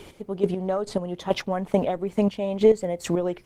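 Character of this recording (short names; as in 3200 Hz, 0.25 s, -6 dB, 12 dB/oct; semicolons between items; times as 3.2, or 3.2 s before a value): chopped level 2.3 Hz, depth 65%, duty 25%; Opus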